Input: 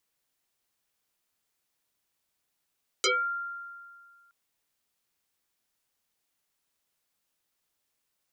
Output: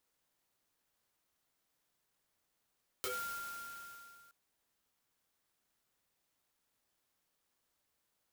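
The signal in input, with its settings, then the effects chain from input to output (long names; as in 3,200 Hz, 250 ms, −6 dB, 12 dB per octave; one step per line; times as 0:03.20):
two-operator FM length 1.27 s, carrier 1,390 Hz, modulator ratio 0.64, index 8, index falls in 0.26 s exponential, decay 1.92 s, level −20.5 dB
downward compressor 2 to 1, threshold −48 dBFS
parametric band 2,500 Hz −12.5 dB 0.29 octaves
converter with an unsteady clock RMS 0.061 ms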